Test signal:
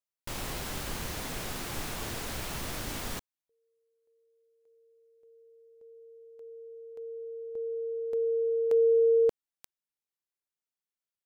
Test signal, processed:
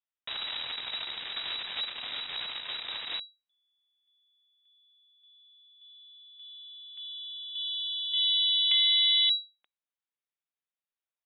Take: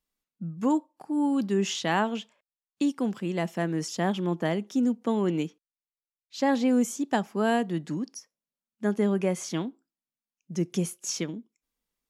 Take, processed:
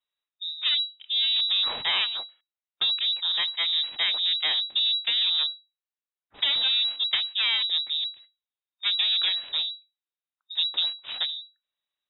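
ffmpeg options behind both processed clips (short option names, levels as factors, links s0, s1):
-af "aeval=exprs='0.282*(cos(1*acos(clip(val(0)/0.282,-1,1)))-cos(1*PI/2))+0.0251*(cos(3*acos(clip(val(0)/0.282,-1,1)))-cos(3*PI/2))+0.0501*(cos(8*acos(clip(val(0)/0.282,-1,1)))-cos(8*PI/2))':c=same,lowpass=f=3300:t=q:w=0.5098,lowpass=f=3300:t=q:w=0.6013,lowpass=f=3300:t=q:w=0.9,lowpass=f=3300:t=q:w=2.563,afreqshift=-3900,acompressor=threshold=0.0562:ratio=6:attack=47:release=71:knee=1:detection=rms,volume=1.19"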